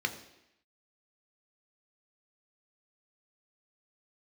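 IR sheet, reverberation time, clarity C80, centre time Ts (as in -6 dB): 0.85 s, 13.5 dB, 12 ms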